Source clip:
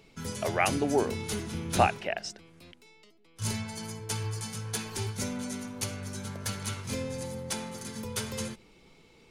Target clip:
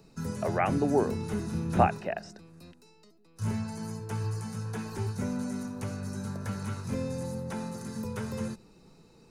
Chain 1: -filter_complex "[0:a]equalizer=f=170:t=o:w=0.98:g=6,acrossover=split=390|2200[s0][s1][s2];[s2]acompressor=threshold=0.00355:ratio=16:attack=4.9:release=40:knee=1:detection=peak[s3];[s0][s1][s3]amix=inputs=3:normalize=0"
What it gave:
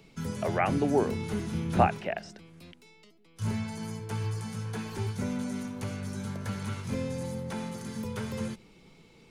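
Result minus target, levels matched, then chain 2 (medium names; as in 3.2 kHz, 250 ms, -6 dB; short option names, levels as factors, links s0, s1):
4 kHz band +3.5 dB
-filter_complex "[0:a]equalizer=f=170:t=o:w=0.98:g=6,acrossover=split=390|2200[s0][s1][s2];[s2]acompressor=threshold=0.00355:ratio=16:attack=4.9:release=40:knee=1:detection=peak,asuperstop=centerf=3100:order=20:qfactor=3.2[s3];[s0][s1][s3]amix=inputs=3:normalize=0"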